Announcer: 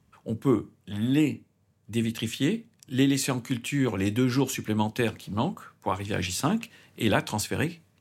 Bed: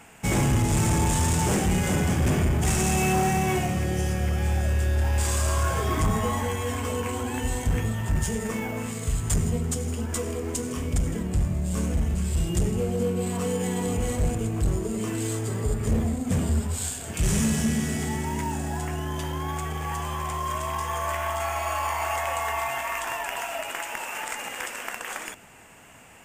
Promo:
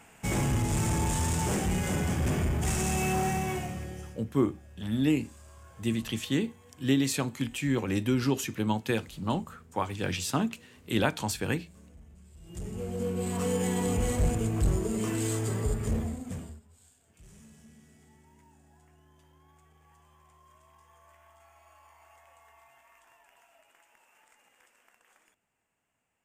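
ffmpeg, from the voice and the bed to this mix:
-filter_complex "[0:a]adelay=3900,volume=0.75[s0];[1:a]volume=11.2,afade=t=out:st=3.29:d=0.94:silence=0.0749894,afade=t=in:st=12.41:d=1.14:silence=0.0473151,afade=t=out:st=15.49:d=1.11:silence=0.0334965[s1];[s0][s1]amix=inputs=2:normalize=0"

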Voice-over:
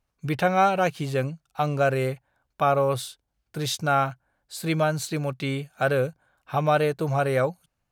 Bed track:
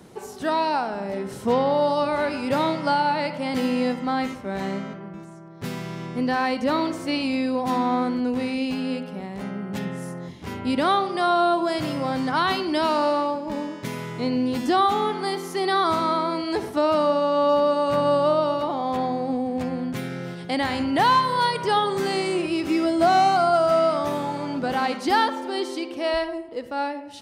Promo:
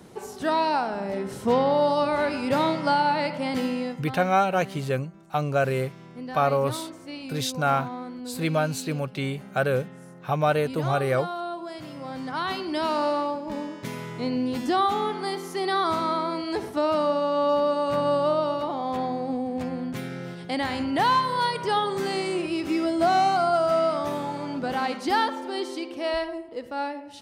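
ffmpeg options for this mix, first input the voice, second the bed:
-filter_complex "[0:a]adelay=3750,volume=0.891[s0];[1:a]volume=2.82,afade=t=out:st=3.44:d=0.59:silence=0.251189,afade=t=in:st=11.9:d=1.12:silence=0.334965[s1];[s0][s1]amix=inputs=2:normalize=0"

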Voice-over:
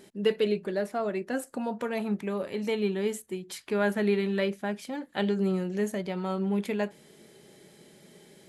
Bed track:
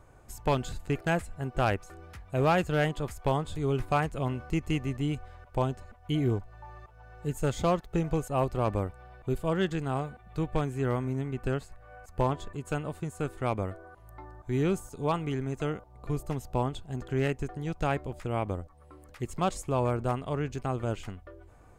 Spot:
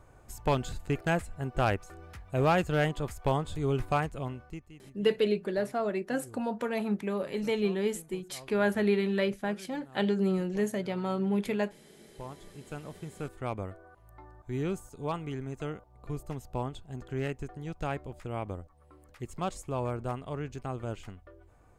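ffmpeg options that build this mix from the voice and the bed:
-filter_complex "[0:a]adelay=4800,volume=0.944[s0];[1:a]volume=7.08,afade=t=out:st=3.86:d=0.84:silence=0.0794328,afade=t=in:st=12:d=1.36:silence=0.133352[s1];[s0][s1]amix=inputs=2:normalize=0"

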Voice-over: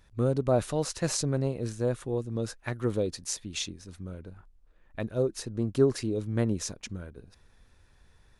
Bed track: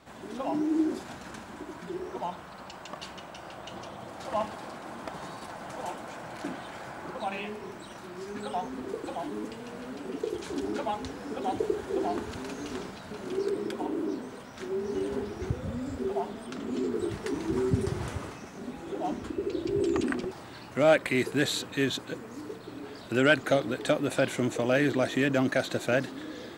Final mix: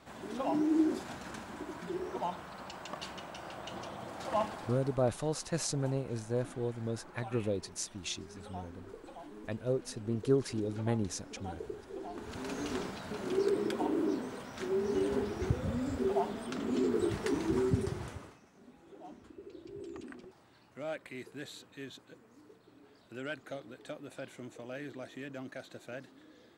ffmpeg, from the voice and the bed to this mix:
-filter_complex "[0:a]adelay=4500,volume=0.562[s0];[1:a]volume=3.98,afade=t=out:st=4.44:d=0.7:silence=0.251189,afade=t=in:st=12.13:d=0.45:silence=0.211349,afade=t=out:st=17.32:d=1.09:silence=0.125893[s1];[s0][s1]amix=inputs=2:normalize=0"

